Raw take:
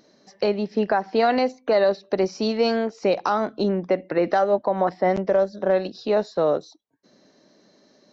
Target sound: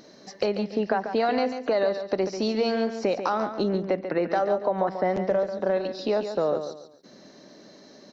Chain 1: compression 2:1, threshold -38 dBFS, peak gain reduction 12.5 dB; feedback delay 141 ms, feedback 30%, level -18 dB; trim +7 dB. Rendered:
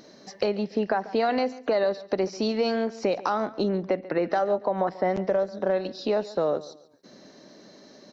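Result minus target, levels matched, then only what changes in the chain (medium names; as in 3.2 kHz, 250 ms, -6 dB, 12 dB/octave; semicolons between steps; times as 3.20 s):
echo-to-direct -9 dB
change: feedback delay 141 ms, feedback 30%, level -9 dB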